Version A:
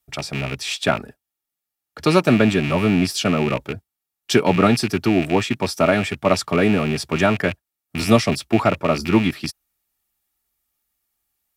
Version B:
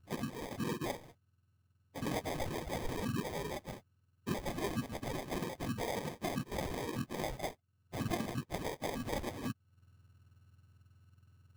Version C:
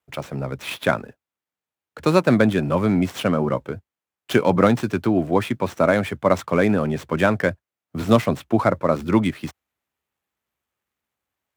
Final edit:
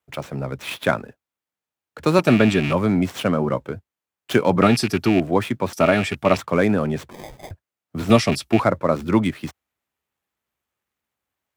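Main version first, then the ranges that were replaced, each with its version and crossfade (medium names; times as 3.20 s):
C
2.19–2.73 s: from A
4.62–5.20 s: from A
5.73–6.37 s: from A
7.11–7.51 s: from B
8.10–8.60 s: from A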